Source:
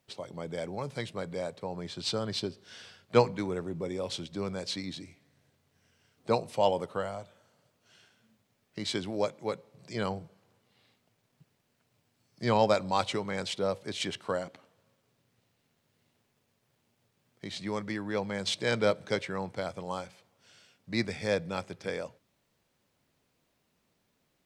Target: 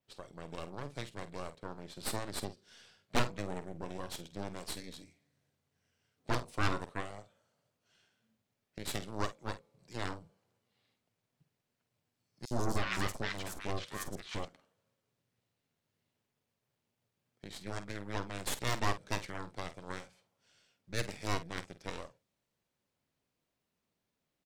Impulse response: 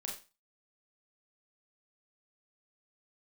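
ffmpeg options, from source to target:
-filter_complex "[0:a]adynamicequalizer=threshold=0.00251:dfrequency=8400:dqfactor=0.88:tfrequency=8400:tqfactor=0.88:attack=5:release=100:ratio=0.375:range=2.5:mode=boostabove:tftype=bell,aeval=exprs='0.376*(cos(1*acos(clip(val(0)/0.376,-1,1)))-cos(1*PI/2))+0.15*(cos(3*acos(clip(val(0)/0.376,-1,1)))-cos(3*PI/2))+0.0531*(cos(6*acos(clip(val(0)/0.376,-1,1)))-cos(6*PI/2))':channel_layout=same,asoftclip=type=tanh:threshold=-24dB,asplit=2[link_01][link_02];[link_02]adelay=49,volume=-12.5dB[link_03];[link_01][link_03]amix=inputs=2:normalize=0,asettb=1/sr,asplit=3[link_04][link_05][link_06];[link_04]atrim=end=12.454[link_07];[link_05]atrim=start=12.45:end=14.45,asetpts=PTS-STARTPTS,afade=type=in:duration=0.004:curve=qsin,afade=type=out:start_time=1.996:duration=0.004:curve=qsin,acrossover=split=1100|5300[link_08][link_09][link_10];[link_08]adelay=60[link_11];[link_09]adelay=310[link_12];[link_11][link_12][link_10]amix=inputs=3:normalize=0,atrim=end_sample=88200[link_13];[link_06]atrim=start=14.446[link_14];[link_07][link_13]acrossfade=duration=0.004:curve1=hsin:curve2=qsin[link_15];[link_15][link_14]acrossfade=duration=0.004:curve1=qsin:curve2=hsin,volume=3.5dB"

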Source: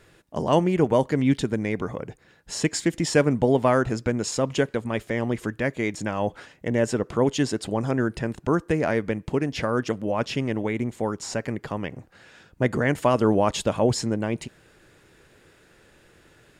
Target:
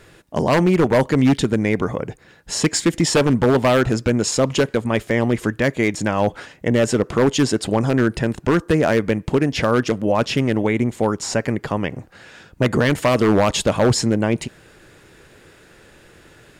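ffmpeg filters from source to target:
ffmpeg -i in.wav -filter_complex "[0:a]asplit=2[link_01][link_02];[link_02]alimiter=limit=-15dB:level=0:latency=1:release=21,volume=-3dB[link_03];[link_01][link_03]amix=inputs=2:normalize=0,aeval=exprs='0.282*(abs(mod(val(0)/0.282+3,4)-2)-1)':channel_layout=same,volume=3dB" out.wav

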